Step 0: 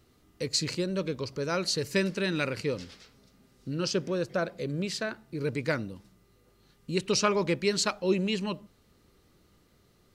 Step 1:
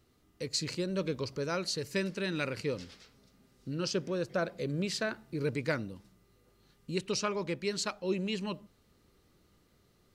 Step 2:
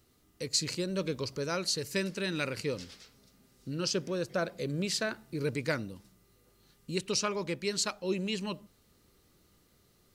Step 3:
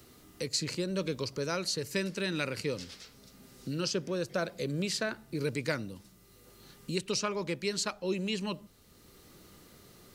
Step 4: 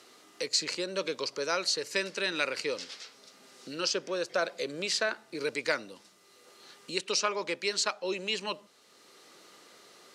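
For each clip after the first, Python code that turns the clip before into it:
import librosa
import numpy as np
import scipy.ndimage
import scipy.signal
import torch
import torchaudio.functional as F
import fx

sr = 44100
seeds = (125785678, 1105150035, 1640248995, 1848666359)

y1 = fx.rider(x, sr, range_db=10, speed_s=0.5)
y1 = F.gain(torch.from_numpy(y1), -4.0).numpy()
y2 = fx.high_shelf(y1, sr, hz=5300.0, db=8.5)
y3 = fx.band_squash(y2, sr, depth_pct=40)
y4 = fx.bandpass_edges(y3, sr, low_hz=490.0, high_hz=7600.0)
y4 = F.gain(torch.from_numpy(y4), 5.0).numpy()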